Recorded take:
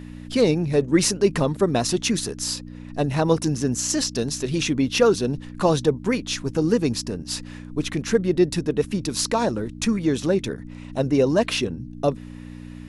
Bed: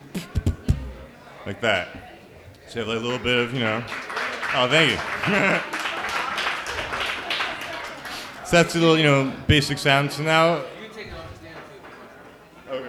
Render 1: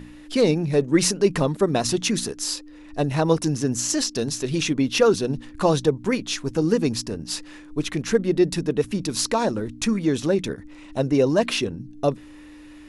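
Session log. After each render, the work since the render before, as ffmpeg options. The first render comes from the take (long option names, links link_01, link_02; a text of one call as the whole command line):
ffmpeg -i in.wav -af "bandreject=frequency=60:width_type=h:width=4,bandreject=frequency=120:width_type=h:width=4,bandreject=frequency=180:width_type=h:width=4,bandreject=frequency=240:width_type=h:width=4" out.wav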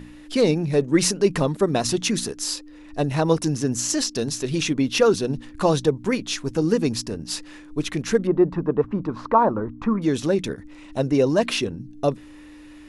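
ffmpeg -i in.wav -filter_complex "[0:a]asettb=1/sr,asplit=3[link_01][link_02][link_03];[link_01]atrim=end=8.274[link_04];[link_02]atrim=start=8.27:end=10.02,asetpts=PTS-STARTPTS,afade=type=in:duration=0.004:curve=qsin,afade=type=out:start_time=1.746:duration=0.004:curve=qsin,lowpass=frequency=1100:width_type=q:width=3.5[link_05];[link_03]atrim=start=10.016[link_06];[link_04][link_05]acrossfade=duration=0.004:curve1=hsin:curve2=qsin[link_07];[link_07][link_06]acrossfade=duration=0.004:curve1=qsin:curve2=hsin" out.wav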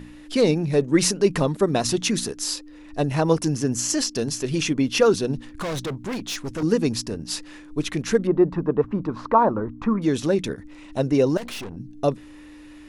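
ffmpeg -i in.wav -filter_complex "[0:a]asettb=1/sr,asplit=3[link_01][link_02][link_03];[link_01]atrim=end=3.044[link_04];[link_02]atrim=start=3.04:end=5,asetpts=PTS-STARTPTS,afade=type=in:duration=0.004:curve=qsin,afade=type=out:start_time=1.956:duration=0.004:curve=qsin,bandreject=frequency=3800:width=12[link_05];[link_03]atrim=start=4.996[link_06];[link_04][link_05]acrossfade=duration=0.004:curve1=hsin:curve2=qsin[link_07];[link_07][link_06]acrossfade=duration=0.004:curve1=qsin:curve2=hsin,asettb=1/sr,asplit=3[link_08][link_09][link_10];[link_08]atrim=end=5.514[link_11];[link_09]atrim=start=5.51:end=6.63,asetpts=PTS-STARTPTS,afade=type=in:duration=0.004:curve=qsin,afade=type=out:start_time=1.116:duration=0.004:curve=qsin,volume=25.5dB,asoftclip=hard,volume=-25.5dB[link_12];[link_10]atrim=start=6.626[link_13];[link_11][link_12]acrossfade=duration=0.004:curve1=hsin:curve2=qsin[link_14];[link_14][link_13]acrossfade=duration=0.004:curve1=qsin:curve2=hsin,asettb=1/sr,asplit=3[link_15][link_16][link_17];[link_15]atrim=end=11.374[link_18];[link_16]atrim=start=11.37:end=11.77,asetpts=PTS-STARTPTS,afade=type=in:duration=0.004:curve=qsin,afade=type=out:start_time=0.396:duration=0.004:curve=qsin,aeval=exprs='(tanh(39.8*val(0)+0.65)-tanh(0.65))/39.8':channel_layout=same[link_19];[link_17]atrim=start=11.766[link_20];[link_18][link_19]acrossfade=duration=0.004:curve1=hsin:curve2=qsin[link_21];[link_21][link_20]acrossfade=duration=0.004:curve1=qsin:curve2=hsin" out.wav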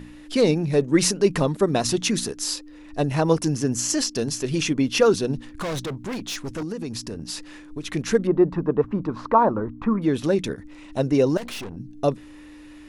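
ffmpeg -i in.wav -filter_complex "[0:a]asplit=3[link_01][link_02][link_03];[link_01]afade=type=out:start_time=5.79:duration=0.02[link_04];[link_02]acompressor=threshold=-27dB:ratio=6:attack=3.2:release=140:knee=1:detection=peak,afade=type=in:start_time=5.79:duration=0.02,afade=type=out:start_time=7.88:duration=0.02[link_05];[link_03]afade=type=in:start_time=7.88:duration=0.02[link_06];[link_04][link_05][link_06]amix=inputs=3:normalize=0,asettb=1/sr,asplit=3[link_07][link_08][link_09];[link_07]atrim=end=9.704[link_10];[link_08]atrim=start=9.7:end=10.24,asetpts=PTS-STARTPTS,afade=type=in:duration=0.004:curve=qsin,afade=type=out:start_time=0.536:duration=0.004:curve=qsin,equalizer=frequency=6400:width=1.1:gain=-11[link_11];[link_09]atrim=start=10.236[link_12];[link_10][link_11]acrossfade=duration=0.004:curve1=hsin:curve2=qsin[link_13];[link_13][link_12]acrossfade=duration=0.004:curve1=qsin:curve2=hsin" out.wav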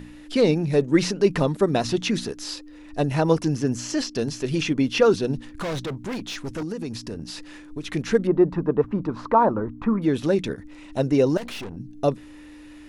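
ffmpeg -i in.wav -filter_complex "[0:a]bandreject=frequency=1100:width=23,acrossover=split=4900[link_01][link_02];[link_02]acompressor=threshold=-43dB:ratio=4:attack=1:release=60[link_03];[link_01][link_03]amix=inputs=2:normalize=0" out.wav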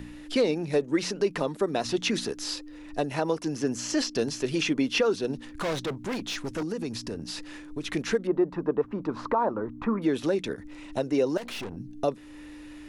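ffmpeg -i in.wav -filter_complex "[0:a]acrossover=split=250[link_01][link_02];[link_01]acompressor=threshold=-38dB:ratio=5[link_03];[link_03][link_02]amix=inputs=2:normalize=0,alimiter=limit=-15dB:level=0:latency=1:release=354" out.wav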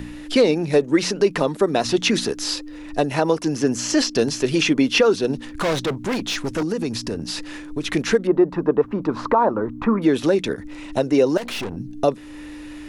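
ffmpeg -i in.wav -af "volume=8dB" out.wav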